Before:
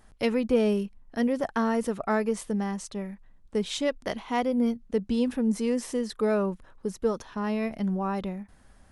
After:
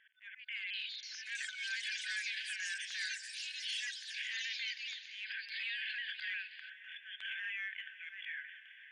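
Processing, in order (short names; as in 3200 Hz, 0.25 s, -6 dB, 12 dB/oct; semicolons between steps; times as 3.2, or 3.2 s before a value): repeated pitch sweeps -3 st, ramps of 0.352 s; gate -53 dBFS, range -15 dB; FFT band-pass 1500–3500 Hz; transient shaper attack -11 dB, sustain +4 dB; compressor 5:1, threshold -55 dBFS, peak gain reduction 17 dB; limiter -50 dBFS, peak gain reduction 8.5 dB; auto swell 0.18 s; on a send: diffused feedback echo 0.546 s, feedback 59%, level -15 dB; on the sum: echoes that change speed 0.393 s, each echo +6 st, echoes 3; gain +18 dB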